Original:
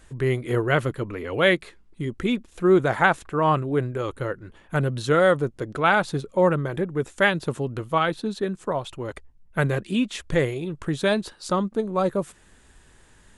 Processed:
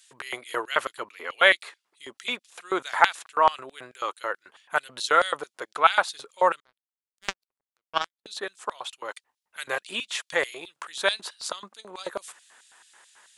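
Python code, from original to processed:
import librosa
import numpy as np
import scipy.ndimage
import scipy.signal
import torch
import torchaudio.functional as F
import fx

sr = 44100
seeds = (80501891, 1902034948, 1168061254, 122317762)

y = fx.filter_lfo_highpass(x, sr, shape='square', hz=4.6, low_hz=880.0, high_hz=3700.0, q=1.3)
y = fx.power_curve(y, sr, exponent=3.0, at=(6.6, 8.26))
y = y * librosa.db_to_amplitude(3.0)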